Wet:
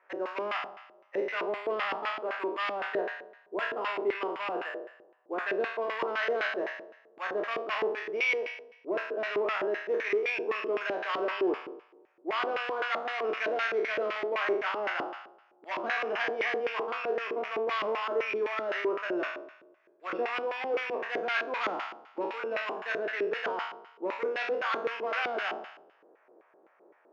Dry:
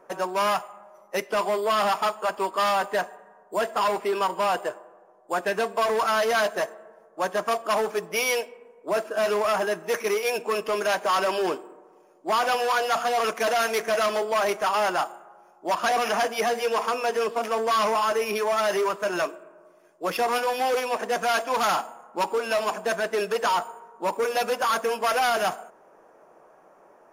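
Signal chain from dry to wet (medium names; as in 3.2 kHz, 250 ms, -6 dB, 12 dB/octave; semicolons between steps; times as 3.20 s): spectral sustain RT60 0.77 s; LFO band-pass square 3.9 Hz 360–2100 Hz; band-pass 210–4300 Hz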